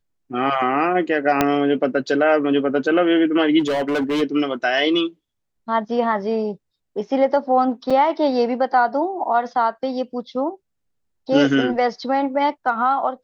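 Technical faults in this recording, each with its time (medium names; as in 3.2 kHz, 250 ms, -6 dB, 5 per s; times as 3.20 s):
1.41 s: pop -2 dBFS
3.59–4.23 s: clipped -17.5 dBFS
7.90–7.91 s: dropout 5 ms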